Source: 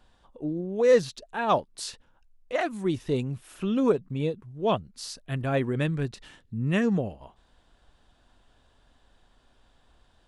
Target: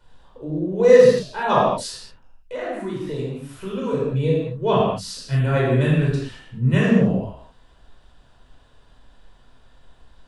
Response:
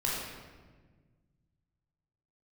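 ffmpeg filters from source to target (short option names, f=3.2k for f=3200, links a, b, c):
-filter_complex "[0:a]asettb=1/sr,asplit=3[a][b][c];[a]atrim=end=1.874[d];[b]atrim=start=1.87:end=3.93,asetpts=PTS-STARTPTS,afade=t=in:d=0.004:c=qsin,afade=t=out:st=2.056:d=0.004:c=qsin,acrossover=split=330|1900[e][f][g];[e]acompressor=threshold=-41dB:ratio=4[h];[f]acompressor=threshold=-34dB:ratio=4[i];[g]acompressor=threshold=-51dB:ratio=4[j];[h][i][j]amix=inputs=3:normalize=0[k];[c]atrim=start=3.926[l];[d][k]acrossfade=d=0.004:c1=hsin:c2=qsin[m];[m][l]acrossfade=d=0.004:c1=qsin:c2=hsin[n];[1:a]atrim=start_sample=2205,afade=t=out:st=0.29:d=0.01,atrim=end_sample=13230[o];[n][o]afir=irnorm=-1:irlink=0"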